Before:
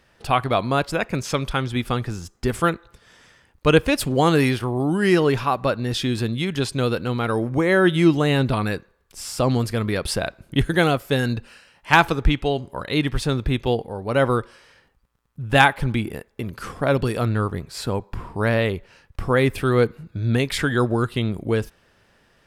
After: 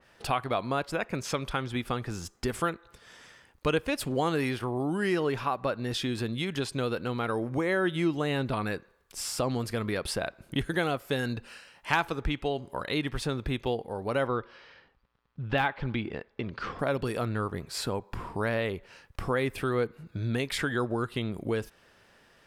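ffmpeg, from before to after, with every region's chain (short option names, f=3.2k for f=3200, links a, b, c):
-filter_complex "[0:a]asettb=1/sr,asplit=3[a][b][c];[a]atrim=end=14.274[d];[b]atrim=start=14.27:end=16.79,asetpts=PTS-STARTPTS,afade=t=in:d=0.004:c=qsin,afade=t=out:st=2.516:d=0.004:c=qsin,lowpass=f=4.6k:w=0.5412,lowpass=f=4.6k:w=1.3066,deesser=0.55[e];[c]atrim=start=16.786[f];[d][e]acrossfade=d=0.004:c1=hsin:c2=qsin[g];[g][f]acrossfade=d=0.004:c1=qsin:c2=hsin,lowshelf=f=190:g=-7,acompressor=threshold=-31dB:ratio=2,adynamicequalizer=threshold=0.00794:dfrequency=2800:dqfactor=0.7:tfrequency=2800:tqfactor=0.7:attack=5:release=100:ratio=0.375:range=2.5:mode=cutabove:tftype=highshelf"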